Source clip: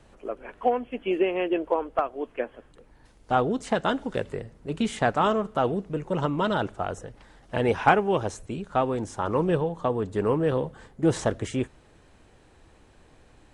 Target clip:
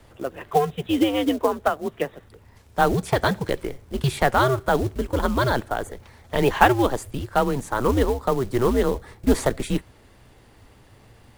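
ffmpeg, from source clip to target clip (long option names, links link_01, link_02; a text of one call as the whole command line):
ffmpeg -i in.wav -af "asetrate=52479,aresample=44100,acrusher=bits=5:mode=log:mix=0:aa=0.000001,afreqshift=-130,volume=4dB" out.wav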